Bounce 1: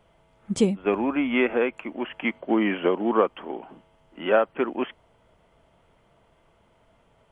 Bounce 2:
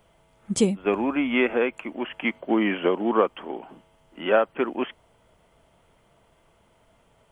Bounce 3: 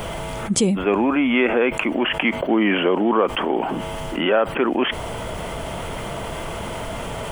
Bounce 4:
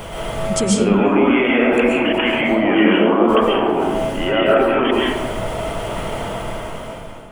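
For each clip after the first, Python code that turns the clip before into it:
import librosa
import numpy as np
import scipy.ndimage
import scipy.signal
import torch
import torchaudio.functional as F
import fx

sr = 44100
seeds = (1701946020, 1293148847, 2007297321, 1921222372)

y1 = fx.high_shelf(x, sr, hz=6200.0, db=10.5)
y2 = fx.env_flatten(y1, sr, amount_pct=70)
y3 = fx.fade_out_tail(y2, sr, length_s=1.24)
y3 = fx.rev_freeverb(y3, sr, rt60_s=1.3, hf_ratio=0.4, predelay_ms=95, drr_db=-5.5)
y3 = y3 * librosa.db_to_amplitude(-2.5)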